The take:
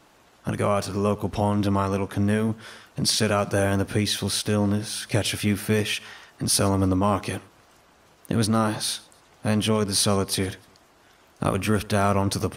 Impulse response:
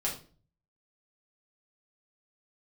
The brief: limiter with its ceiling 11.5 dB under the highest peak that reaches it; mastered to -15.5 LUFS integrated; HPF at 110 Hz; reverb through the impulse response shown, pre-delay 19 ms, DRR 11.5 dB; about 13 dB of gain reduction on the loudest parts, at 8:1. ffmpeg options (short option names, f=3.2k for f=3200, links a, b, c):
-filter_complex "[0:a]highpass=110,acompressor=threshold=-31dB:ratio=8,alimiter=level_in=5dB:limit=-24dB:level=0:latency=1,volume=-5dB,asplit=2[a][b];[1:a]atrim=start_sample=2205,adelay=19[c];[b][c]afir=irnorm=-1:irlink=0,volume=-16.5dB[d];[a][d]amix=inputs=2:normalize=0,volume=23.5dB"